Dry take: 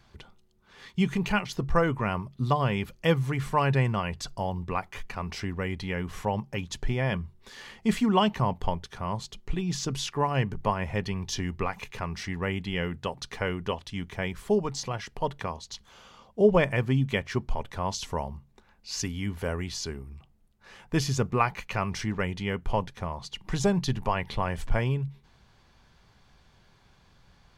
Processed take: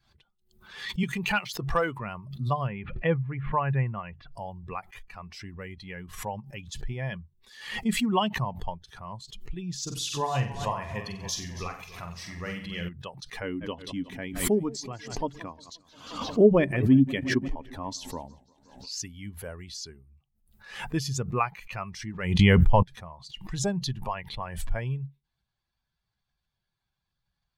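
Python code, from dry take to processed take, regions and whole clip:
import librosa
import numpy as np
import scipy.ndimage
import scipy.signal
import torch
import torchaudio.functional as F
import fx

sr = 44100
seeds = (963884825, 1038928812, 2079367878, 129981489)

y = fx.chain(x, sr, fx.low_shelf(hz=240.0, db=-9.5),
    fx.leveller(passes=1),
    fx.band_squash(depth_pct=40), at=(1.03, 1.99))
y = fx.chain(y, sr, fx.lowpass(hz=2600.0, slope=24),
    fx.sustainer(db_per_s=140.0), at=(2.67, 4.32))
y = fx.chain(y, sr, fx.high_shelf(hz=6500.0, db=6.0),
    fx.room_flutter(wall_m=7.9, rt60_s=0.62),
    fx.echo_warbled(ms=280, feedback_pct=58, rate_hz=2.8, cents=82, wet_db=-11.5), at=(9.82, 12.89))
y = fx.chain(y, sr, fx.peak_eq(hz=280.0, db=14.0, octaves=0.51),
    fx.echo_warbled(ms=176, feedback_pct=65, rate_hz=2.8, cents=141, wet_db=-16), at=(13.43, 18.9))
y = fx.chain(y, sr, fx.low_shelf(hz=91.0, db=9.0),
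    fx.env_flatten(amount_pct=100), at=(22.39, 22.83))
y = fx.bin_expand(y, sr, power=1.5)
y = fx.pre_swell(y, sr, db_per_s=83.0)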